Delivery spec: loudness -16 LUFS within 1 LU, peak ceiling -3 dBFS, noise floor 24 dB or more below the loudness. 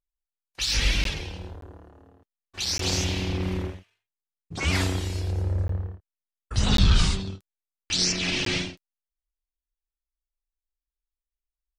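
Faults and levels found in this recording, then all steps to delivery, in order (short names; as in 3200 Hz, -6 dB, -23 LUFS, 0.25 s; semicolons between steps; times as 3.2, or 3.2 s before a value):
dropouts 6; longest dropout 13 ms; loudness -26.0 LUFS; peak -8.0 dBFS; loudness target -16.0 LUFS
-> interpolate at 1.04/1.61/2.78/5.68/6.77/8.45, 13 ms; gain +10 dB; limiter -3 dBFS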